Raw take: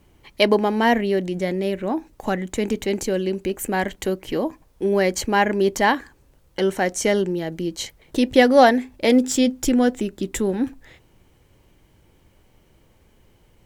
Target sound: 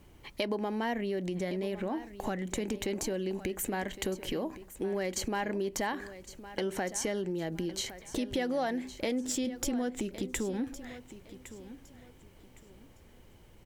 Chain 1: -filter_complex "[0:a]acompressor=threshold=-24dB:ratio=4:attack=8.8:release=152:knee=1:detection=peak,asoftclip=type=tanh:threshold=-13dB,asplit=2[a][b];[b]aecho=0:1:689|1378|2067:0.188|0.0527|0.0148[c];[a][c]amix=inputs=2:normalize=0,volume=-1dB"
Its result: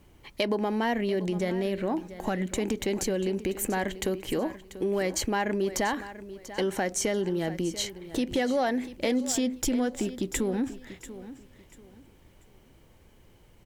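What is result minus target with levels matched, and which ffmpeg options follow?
echo 0.422 s early; compressor: peak gain reduction -5.5 dB
-filter_complex "[0:a]acompressor=threshold=-31.5dB:ratio=4:attack=8.8:release=152:knee=1:detection=peak,asoftclip=type=tanh:threshold=-13dB,asplit=2[a][b];[b]aecho=0:1:1111|2222|3333:0.188|0.0527|0.0148[c];[a][c]amix=inputs=2:normalize=0,volume=-1dB"

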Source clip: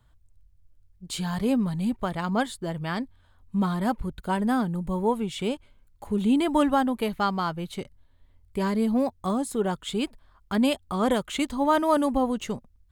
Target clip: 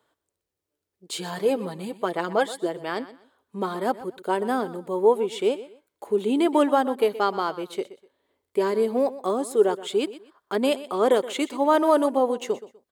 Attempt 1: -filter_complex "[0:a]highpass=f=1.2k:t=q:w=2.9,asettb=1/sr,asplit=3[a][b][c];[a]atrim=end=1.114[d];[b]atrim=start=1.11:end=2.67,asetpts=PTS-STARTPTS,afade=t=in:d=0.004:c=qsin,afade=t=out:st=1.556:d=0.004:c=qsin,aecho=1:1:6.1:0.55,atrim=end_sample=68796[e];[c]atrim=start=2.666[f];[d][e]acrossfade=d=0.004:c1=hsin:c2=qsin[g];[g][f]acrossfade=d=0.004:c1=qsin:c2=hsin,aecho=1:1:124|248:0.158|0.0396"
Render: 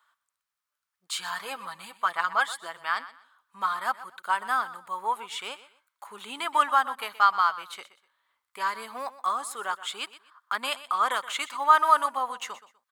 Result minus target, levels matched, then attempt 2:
500 Hz band -15.5 dB
-filter_complex "[0:a]highpass=f=400:t=q:w=2.9,asettb=1/sr,asplit=3[a][b][c];[a]atrim=end=1.114[d];[b]atrim=start=1.11:end=2.67,asetpts=PTS-STARTPTS,afade=t=in:d=0.004:c=qsin,afade=t=out:st=1.556:d=0.004:c=qsin,aecho=1:1:6.1:0.55,atrim=end_sample=68796[e];[c]atrim=start=2.666[f];[d][e]acrossfade=d=0.004:c1=hsin:c2=qsin[g];[g][f]acrossfade=d=0.004:c1=qsin:c2=hsin,aecho=1:1:124|248:0.158|0.0396"

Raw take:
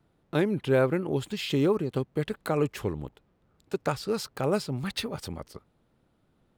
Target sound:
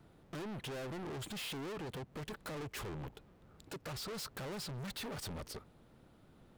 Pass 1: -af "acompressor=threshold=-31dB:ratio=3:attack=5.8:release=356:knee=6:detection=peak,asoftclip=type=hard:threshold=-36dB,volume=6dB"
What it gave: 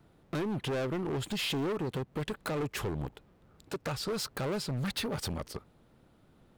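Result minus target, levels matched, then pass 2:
hard clip: distortion -5 dB
-af "acompressor=threshold=-31dB:ratio=3:attack=5.8:release=356:knee=6:detection=peak,asoftclip=type=hard:threshold=-47.5dB,volume=6dB"

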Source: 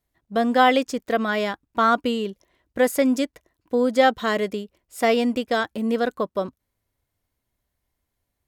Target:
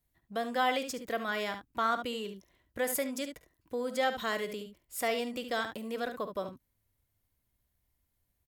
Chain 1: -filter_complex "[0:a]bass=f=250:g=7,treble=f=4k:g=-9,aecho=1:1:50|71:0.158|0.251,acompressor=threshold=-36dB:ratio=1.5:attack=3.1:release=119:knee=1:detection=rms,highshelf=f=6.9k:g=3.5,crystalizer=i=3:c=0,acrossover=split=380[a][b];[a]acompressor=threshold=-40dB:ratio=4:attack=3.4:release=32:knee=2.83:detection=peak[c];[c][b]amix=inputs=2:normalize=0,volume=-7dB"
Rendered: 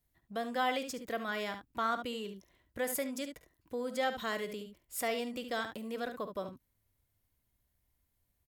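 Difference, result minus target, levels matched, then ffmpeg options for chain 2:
compressor: peak gain reduction +3 dB
-filter_complex "[0:a]bass=f=250:g=7,treble=f=4k:g=-9,aecho=1:1:50|71:0.158|0.251,acompressor=threshold=-26.5dB:ratio=1.5:attack=3.1:release=119:knee=1:detection=rms,highshelf=f=6.9k:g=3.5,crystalizer=i=3:c=0,acrossover=split=380[a][b];[a]acompressor=threshold=-40dB:ratio=4:attack=3.4:release=32:knee=2.83:detection=peak[c];[c][b]amix=inputs=2:normalize=0,volume=-7dB"

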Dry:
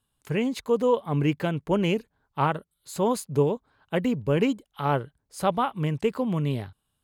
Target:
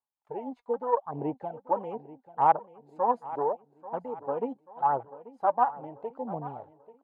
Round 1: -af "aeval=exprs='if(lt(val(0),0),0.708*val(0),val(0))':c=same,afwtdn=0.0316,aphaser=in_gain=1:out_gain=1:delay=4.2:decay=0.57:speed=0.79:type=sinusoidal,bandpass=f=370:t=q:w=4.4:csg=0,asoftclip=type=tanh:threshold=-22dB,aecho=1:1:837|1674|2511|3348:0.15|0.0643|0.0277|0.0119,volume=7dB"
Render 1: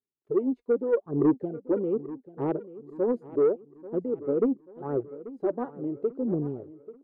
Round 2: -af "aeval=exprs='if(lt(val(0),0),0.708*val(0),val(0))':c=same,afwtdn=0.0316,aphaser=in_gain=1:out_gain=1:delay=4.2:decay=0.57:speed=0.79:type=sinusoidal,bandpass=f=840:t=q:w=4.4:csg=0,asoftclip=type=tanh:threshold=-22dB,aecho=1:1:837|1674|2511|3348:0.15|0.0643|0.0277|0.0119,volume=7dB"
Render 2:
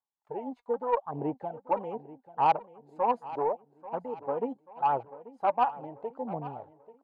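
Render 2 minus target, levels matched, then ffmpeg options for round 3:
soft clip: distortion +18 dB
-af "aeval=exprs='if(lt(val(0),0),0.708*val(0),val(0))':c=same,afwtdn=0.0316,aphaser=in_gain=1:out_gain=1:delay=4.2:decay=0.57:speed=0.79:type=sinusoidal,bandpass=f=840:t=q:w=4.4:csg=0,asoftclip=type=tanh:threshold=-11dB,aecho=1:1:837|1674|2511|3348:0.15|0.0643|0.0277|0.0119,volume=7dB"

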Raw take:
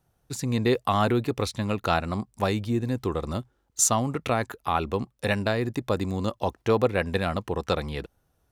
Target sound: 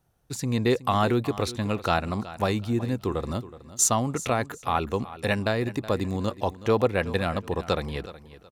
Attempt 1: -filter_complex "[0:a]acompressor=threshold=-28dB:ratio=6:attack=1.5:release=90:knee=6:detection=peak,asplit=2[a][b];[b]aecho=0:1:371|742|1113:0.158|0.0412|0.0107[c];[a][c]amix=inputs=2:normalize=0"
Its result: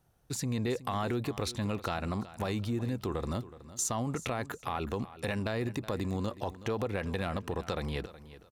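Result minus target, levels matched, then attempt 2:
compressor: peak gain reduction +13.5 dB
-filter_complex "[0:a]asplit=2[a][b];[b]aecho=0:1:371|742|1113:0.158|0.0412|0.0107[c];[a][c]amix=inputs=2:normalize=0"

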